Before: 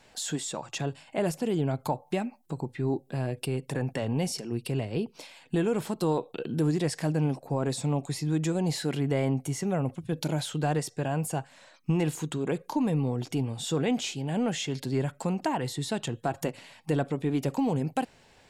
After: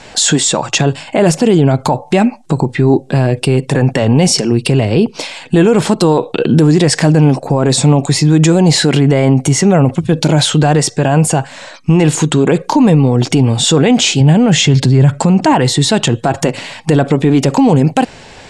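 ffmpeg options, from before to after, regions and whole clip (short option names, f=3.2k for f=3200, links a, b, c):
-filter_complex "[0:a]asettb=1/sr,asplit=3[a][b][c];[a]atrim=end=14.204[d];[b]atrim=start=14.2:end=15.53,asetpts=PTS-STARTPTS,afade=t=in:d=0.004:c=qsin,afade=t=out:st=1.326:d=0.004:c=qsin,lowpass=11k,equalizer=f=120:t=o:w=1.2:g=10.5[e];[c]atrim=start=15.526[f];[d][e]acrossfade=d=0.004:c1=hsin:c2=qsin[g];[g][f]acrossfade=d=0.004:c1=qsin:c2=hsin,lowpass=f=8.9k:w=0.5412,lowpass=f=8.9k:w=1.3066,alimiter=level_in=24dB:limit=-1dB:release=50:level=0:latency=1,volume=-1dB"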